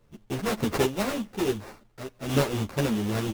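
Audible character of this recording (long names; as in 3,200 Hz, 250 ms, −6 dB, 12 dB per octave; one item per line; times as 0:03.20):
a buzz of ramps at a fixed pitch in blocks of 16 samples
sample-and-hold tremolo 3.5 Hz
aliases and images of a low sample rate 3,200 Hz, jitter 20%
a shimmering, thickened sound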